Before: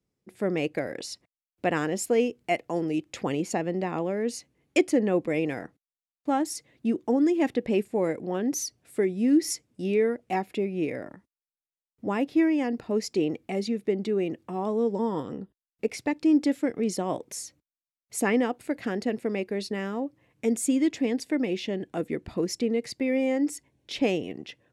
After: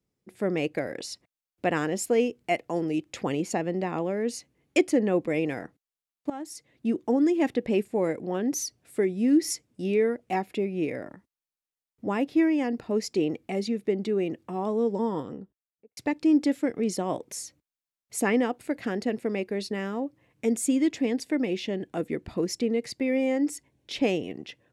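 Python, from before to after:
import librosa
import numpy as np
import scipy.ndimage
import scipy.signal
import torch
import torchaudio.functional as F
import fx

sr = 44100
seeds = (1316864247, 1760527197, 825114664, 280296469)

y = fx.studio_fade_out(x, sr, start_s=15.02, length_s=0.95)
y = fx.edit(y, sr, fx.fade_in_from(start_s=6.3, length_s=0.64, floor_db=-16.0), tone=tone)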